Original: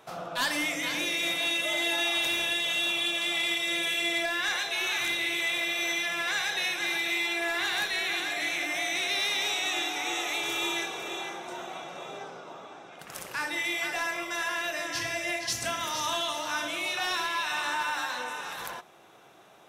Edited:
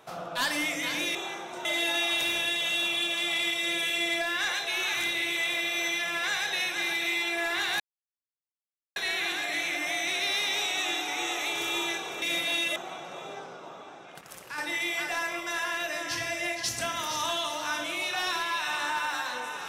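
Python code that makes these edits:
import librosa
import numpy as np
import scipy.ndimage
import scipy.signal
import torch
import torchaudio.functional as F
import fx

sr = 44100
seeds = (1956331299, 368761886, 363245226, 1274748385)

y = fx.edit(x, sr, fx.swap(start_s=1.15, length_s=0.54, other_s=11.1, other_length_s=0.5),
    fx.insert_silence(at_s=7.84, length_s=1.16),
    fx.clip_gain(start_s=13.05, length_s=0.37, db=-5.5), tone=tone)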